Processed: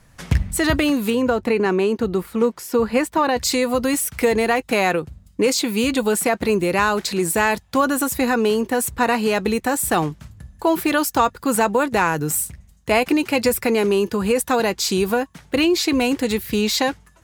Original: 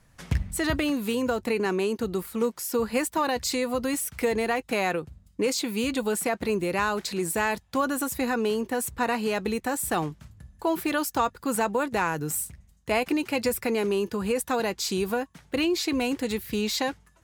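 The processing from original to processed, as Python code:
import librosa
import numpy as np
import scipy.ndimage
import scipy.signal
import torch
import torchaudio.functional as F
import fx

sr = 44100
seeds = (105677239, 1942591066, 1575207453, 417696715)

y = fx.high_shelf(x, sr, hz=4600.0, db=-11.0, at=(1.1, 3.37))
y = y * librosa.db_to_amplitude(7.5)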